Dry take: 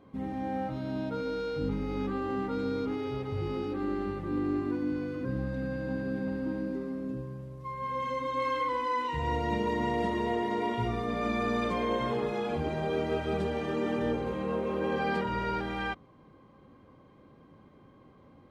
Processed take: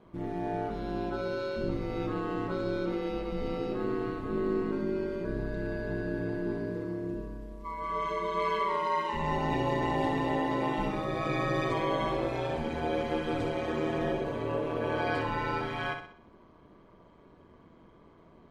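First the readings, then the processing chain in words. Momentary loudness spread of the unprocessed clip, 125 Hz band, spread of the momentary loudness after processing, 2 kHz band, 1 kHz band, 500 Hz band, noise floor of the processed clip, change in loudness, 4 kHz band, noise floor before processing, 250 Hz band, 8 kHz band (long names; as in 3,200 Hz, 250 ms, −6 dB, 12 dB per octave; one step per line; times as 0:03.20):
5 LU, 0.0 dB, 6 LU, +1.0 dB, +0.5 dB, +0.5 dB, −57 dBFS, 0.0 dB, +0.5 dB, −57 dBFS, −1.0 dB, can't be measured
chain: low-shelf EQ 150 Hz −2.5 dB
ring modulation 83 Hz
on a send: flutter between parallel walls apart 10.9 metres, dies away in 0.54 s
on the sum: level +3 dB
MP3 56 kbit/s 48,000 Hz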